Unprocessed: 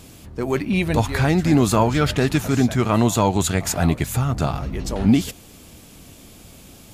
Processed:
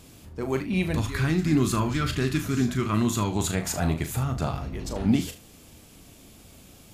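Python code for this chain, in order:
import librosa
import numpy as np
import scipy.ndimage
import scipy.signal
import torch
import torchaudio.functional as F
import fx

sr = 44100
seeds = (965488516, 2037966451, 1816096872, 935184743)

p1 = fx.spec_box(x, sr, start_s=0.95, length_s=2.38, low_hz=410.0, high_hz=980.0, gain_db=-10)
p2 = p1 + fx.room_early_taps(p1, sr, ms=(38, 75), db=(-8.5, -15.5), dry=0)
y = F.gain(torch.from_numpy(p2), -6.5).numpy()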